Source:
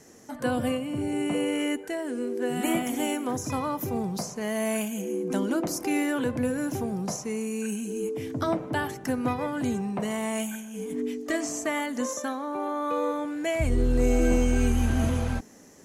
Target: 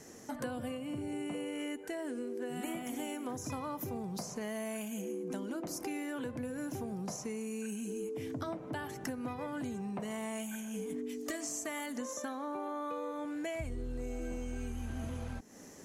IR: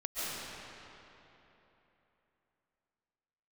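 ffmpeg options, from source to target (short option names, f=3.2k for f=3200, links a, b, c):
-filter_complex "[0:a]asettb=1/sr,asplit=3[a][b][c];[a]atrim=end=11.094[d];[b]atrim=start=11.09:end=11.93,asetpts=PTS-STARTPTS,afade=t=in:d=0.004:c=qsin,afade=t=out:st=0.836:d=0.004:c=qsin,highshelf=f=4.6k:g=10[e];[c]atrim=start=11.926[f];[d][e]acrossfade=d=0.004:c1=hsin:c2=qsin[g];[g][f]acrossfade=d=0.004:c1=qsin:c2=hsin,acompressor=threshold=-36dB:ratio=10"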